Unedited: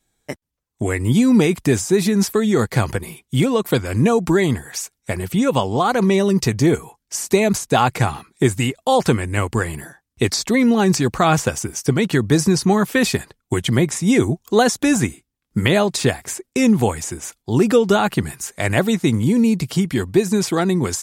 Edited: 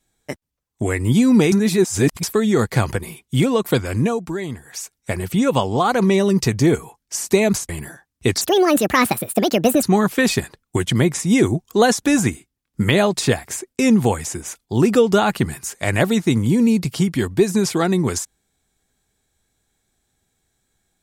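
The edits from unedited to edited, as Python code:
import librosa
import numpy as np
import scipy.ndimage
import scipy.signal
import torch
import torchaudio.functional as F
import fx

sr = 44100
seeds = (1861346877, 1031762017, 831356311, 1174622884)

y = fx.edit(x, sr, fx.reverse_span(start_s=1.52, length_s=0.71),
    fx.fade_down_up(start_s=3.88, length_s=1.1, db=-10.0, fade_s=0.37),
    fx.cut(start_s=7.69, length_s=1.96),
    fx.speed_span(start_s=10.37, length_s=2.23, speed=1.57), tone=tone)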